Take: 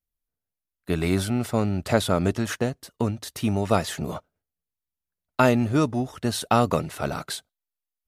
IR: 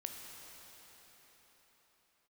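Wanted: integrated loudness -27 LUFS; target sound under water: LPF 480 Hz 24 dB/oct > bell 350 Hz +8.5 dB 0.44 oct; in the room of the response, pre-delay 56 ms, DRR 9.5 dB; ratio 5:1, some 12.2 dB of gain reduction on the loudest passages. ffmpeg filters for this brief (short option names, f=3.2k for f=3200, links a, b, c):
-filter_complex "[0:a]acompressor=threshold=-28dB:ratio=5,asplit=2[a][b];[1:a]atrim=start_sample=2205,adelay=56[c];[b][c]afir=irnorm=-1:irlink=0,volume=-8dB[d];[a][d]amix=inputs=2:normalize=0,lowpass=f=480:w=0.5412,lowpass=f=480:w=1.3066,equalizer=f=350:t=o:w=0.44:g=8.5,volume=5.5dB"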